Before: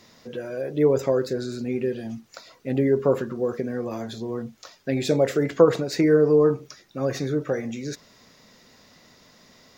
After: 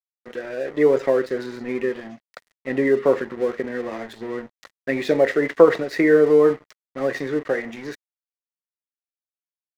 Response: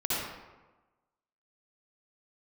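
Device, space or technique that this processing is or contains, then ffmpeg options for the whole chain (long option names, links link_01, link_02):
pocket radio on a weak battery: -af "highpass=270,lowpass=3600,aeval=exprs='sgn(val(0))*max(abs(val(0))-0.00708,0)':channel_layout=same,equalizer=frequency=1900:width_type=o:width=0.28:gain=11.5,volume=4dB"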